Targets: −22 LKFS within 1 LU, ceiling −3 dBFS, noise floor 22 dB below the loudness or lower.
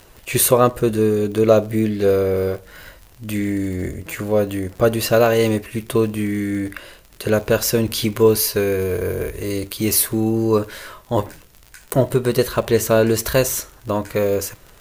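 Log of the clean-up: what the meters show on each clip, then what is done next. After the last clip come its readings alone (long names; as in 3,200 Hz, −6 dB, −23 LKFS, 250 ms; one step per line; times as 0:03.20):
crackle rate 47 per second; integrated loudness −19.0 LKFS; sample peak −1.0 dBFS; target loudness −22.0 LKFS
→ click removal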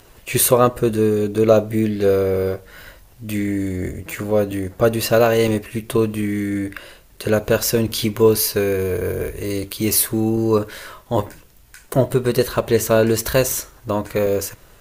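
crackle rate 1.5 per second; integrated loudness −19.0 LKFS; sample peak −1.0 dBFS; target loudness −22.0 LKFS
→ level −3 dB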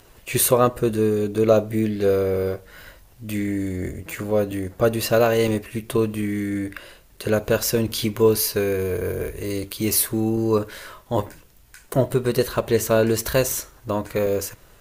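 integrated loudness −22.0 LKFS; sample peak −4.0 dBFS; background noise floor −52 dBFS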